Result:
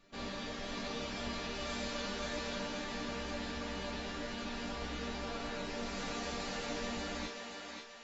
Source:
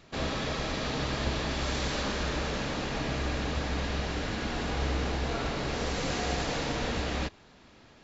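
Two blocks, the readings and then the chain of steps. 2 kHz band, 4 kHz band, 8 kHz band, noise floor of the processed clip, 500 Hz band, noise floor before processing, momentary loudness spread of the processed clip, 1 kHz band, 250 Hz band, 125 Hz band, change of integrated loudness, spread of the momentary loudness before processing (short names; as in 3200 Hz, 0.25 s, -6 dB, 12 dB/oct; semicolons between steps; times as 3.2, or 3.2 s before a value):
-7.0 dB, -6.5 dB, n/a, -47 dBFS, -7.5 dB, -56 dBFS, 3 LU, -7.5 dB, -7.0 dB, -15.0 dB, -8.0 dB, 2 LU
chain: resonator bank G3 minor, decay 0.23 s; on a send: thinning echo 0.533 s, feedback 47%, high-pass 510 Hz, level -3 dB; on the sum: gain +6 dB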